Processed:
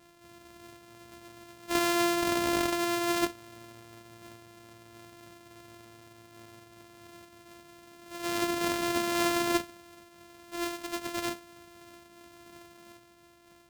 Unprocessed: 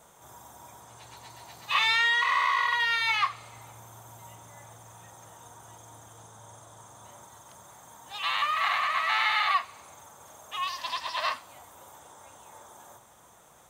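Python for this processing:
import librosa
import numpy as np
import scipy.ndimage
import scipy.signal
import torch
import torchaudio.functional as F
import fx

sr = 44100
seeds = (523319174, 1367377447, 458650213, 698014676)

y = np.r_[np.sort(x[:len(x) // 128 * 128].reshape(-1, 128), axis=1).ravel(), x[len(x) // 128 * 128:]]
y = fx.am_noise(y, sr, seeds[0], hz=5.7, depth_pct=50)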